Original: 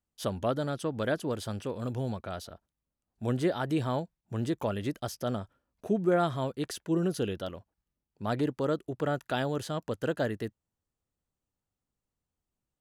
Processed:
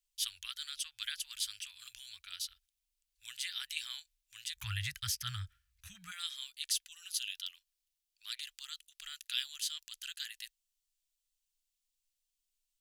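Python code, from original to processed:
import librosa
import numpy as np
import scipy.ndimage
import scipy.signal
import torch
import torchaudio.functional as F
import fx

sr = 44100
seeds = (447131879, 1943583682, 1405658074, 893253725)

y = fx.cheby2_bandstop(x, sr, low_hz=fx.steps((0.0, 150.0), (4.56, 280.0), (6.1, 100.0)), high_hz=570.0, order=4, stop_db=80)
y = y * librosa.db_to_amplitude(7.5)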